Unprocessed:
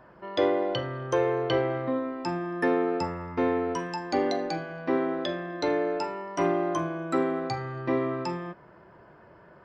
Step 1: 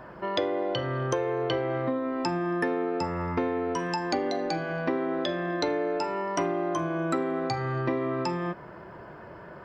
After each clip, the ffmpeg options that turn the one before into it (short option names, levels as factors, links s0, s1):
-af "acompressor=threshold=0.02:ratio=6,volume=2.66"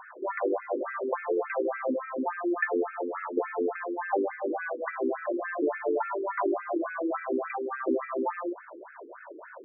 -af "afftfilt=real='re*between(b*sr/1024,330*pow(1900/330,0.5+0.5*sin(2*PI*3.5*pts/sr))/1.41,330*pow(1900/330,0.5+0.5*sin(2*PI*3.5*pts/sr))*1.41)':imag='im*between(b*sr/1024,330*pow(1900/330,0.5+0.5*sin(2*PI*3.5*pts/sr))/1.41,330*pow(1900/330,0.5+0.5*sin(2*PI*3.5*pts/sr))*1.41)':win_size=1024:overlap=0.75,volume=1.68"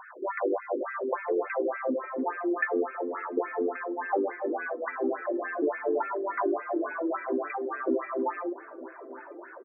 -filter_complex "[0:a]asplit=2[s0][s1];[s1]adelay=910,lowpass=f=1300:p=1,volume=0.141,asplit=2[s2][s3];[s3]adelay=910,lowpass=f=1300:p=1,volume=0.46,asplit=2[s4][s5];[s5]adelay=910,lowpass=f=1300:p=1,volume=0.46,asplit=2[s6][s7];[s7]adelay=910,lowpass=f=1300:p=1,volume=0.46[s8];[s0][s2][s4][s6][s8]amix=inputs=5:normalize=0"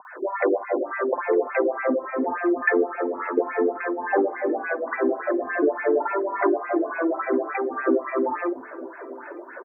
-filter_complex "[0:a]acrossover=split=180|880[s0][s1][s2];[s2]adelay=50[s3];[s0]adelay=380[s4];[s4][s1][s3]amix=inputs=3:normalize=0,volume=2.37"